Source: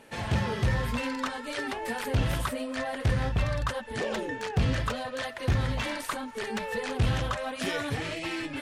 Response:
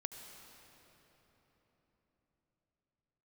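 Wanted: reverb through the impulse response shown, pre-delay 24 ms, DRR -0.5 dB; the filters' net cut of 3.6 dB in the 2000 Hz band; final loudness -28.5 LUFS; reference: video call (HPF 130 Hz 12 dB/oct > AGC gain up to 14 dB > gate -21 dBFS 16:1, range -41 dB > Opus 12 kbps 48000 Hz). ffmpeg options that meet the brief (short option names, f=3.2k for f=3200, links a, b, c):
-filter_complex "[0:a]equalizer=f=2k:t=o:g=-4.5,asplit=2[a][b];[1:a]atrim=start_sample=2205,adelay=24[c];[b][c]afir=irnorm=-1:irlink=0,volume=2.5dB[d];[a][d]amix=inputs=2:normalize=0,highpass=130,dynaudnorm=m=14dB,agate=range=-41dB:threshold=-21dB:ratio=16,volume=13dB" -ar 48000 -c:a libopus -b:a 12k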